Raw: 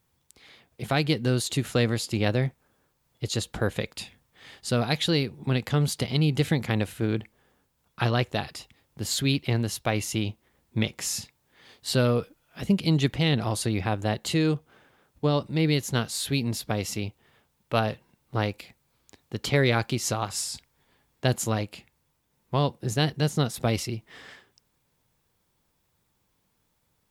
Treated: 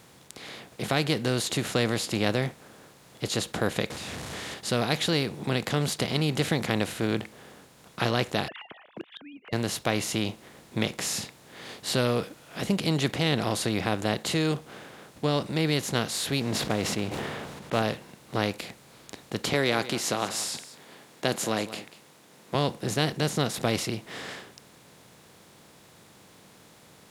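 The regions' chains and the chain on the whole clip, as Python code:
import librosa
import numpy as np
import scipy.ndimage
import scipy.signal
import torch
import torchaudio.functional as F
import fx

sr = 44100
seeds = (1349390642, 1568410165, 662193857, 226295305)

y = fx.chain(x, sr, fx.clip_1bit(),
    fx.lowpass(hz=8600.0, slope=12),
    fx.peak_eq(hz=74.0, db=14.5, octaves=0.78), at=(3.9, 4.54))
y = fx.chain(y, sr, fx.sine_speech(),
    fx.gate_flip(shuts_db=-29.0, range_db=-32),
    fx.band_squash(depth_pct=40), at=(8.48, 9.53))
y = fx.chain(y, sr, fx.block_float(bits=5),
    fx.lowpass(hz=1600.0, slope=6),
    fx.sustainer(db_per_s=42.0), at=(16.4, 17.82))
y = fx.chain(y, sr, fx.highpass(hz=210.0, slope=12),
    fx.echo_single(ms=188, db=-24.0), at=(19.53, 22.55))
y = fx.bin_compress(y, sr, power=0.6)
y = fx.highpass(y, sr, hz=140.0, slope=6)
y = F.gain(torch.from_numpy(y), -3.5).numpy()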